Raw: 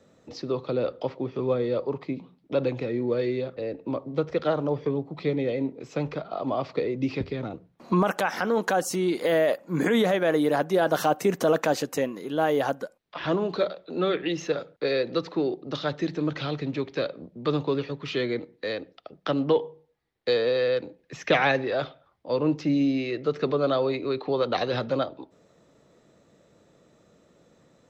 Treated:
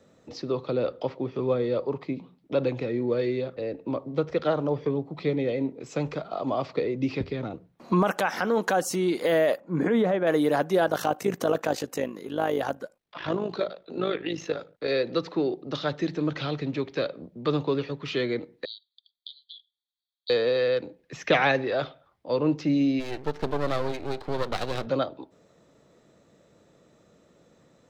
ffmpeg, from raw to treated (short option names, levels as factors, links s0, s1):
-filter_complex "[0:a]asettb=1/sr,asplit=3[s0][s1][s2];[s0]atrim=end=5.864[s3];[s1]atrim=start=5.86:end=6.66,asetpts=PTS-STARTPTS,afade=t=in:d=0.004:c=qsin,afade=t=out:st=0.796:d=0.004:c=qsin,equalizer=f=7700:t=o:w=0.73:g=9[s4];[s2]atrim=start=6.656[s5];[s3][s4]acrossfade=d=0.004:c1=hsin:c2=qsin[s6];[s6][s5]acrossfade=d=0.004:c1=qsin:c2=hsin,asettb=1/sr,asplit=3[s7][s8][s9];[s7]atrim=end=9.604[s10];[s8]atrim=start=9.6:end=10.27,asetpts=PTS-STARTPTS,afade=t=in:d=0.004:c=qsin,afade=t=out:st=0.666:d=0.004:c=qsin,lowpass=f=1100:p=1[s11];[s9]atrim=start=10.266[s12];[s10][s11]acrossfade=d=0.004:c1=hsin:c2=qsin[s13];[s13][s12]acrossfade=d=0.004:c1=qsin:c2=hsin,asettb=1/sr,asplit=3[s14][s15][s16];[s14]atrim=end=10.864[s17];[s15]atrim=start=10.86:end=14.89,asetpts=PTS-STARTPTS,afade=t=in:d=0.004:c=qsin,afade=t=out:st=4.026:d=0.004:c=qsin,tremolo=f=52:d=0.667[s18];[s16]atrim=start=14.886[s19];[s17][s18]acrossfade=d=0.004:c1=hsin:c2=qsin[s20];[s20][s19]acrossfade=d=0.004:c1=qsin:c2=hsin,asettb=1/sr,asplit=3[s21][s22][s23];[s21]atrim=end=18.654[s24];[s22]atrim=start=18.65:end=20.3,asetpts=PTS-STARTPTS,afade=t=in:d=0.004:c=qsin,afade=t=out:st=1.646:d=0.004:c=qsin,asuperpass=centerf=3900:order=20:qfactor=2.5[s25];[s23]atrim=start=20.296[s26];[s24][s25]acrossfade=d=0.004:c1=hsin:c2=qsin[s27];[s27][s26]acrossfade=d=0.004:c1=qsin:c2=hsin,asplit=3[s28][s29][s30];[s28]afade=t=out:st=22.99:d=0.02[s31];[s29]aeval=exprs='max(val(0),0)':c=same,afade=t=in:st=22.99:d=0.02,afade=t=out:st=24.85:d=0.02[s32];[s30]afade=t=in:st=24.85:d=0.02[s33];[s31][s32][s33]amix=inputs=3:normalize=0"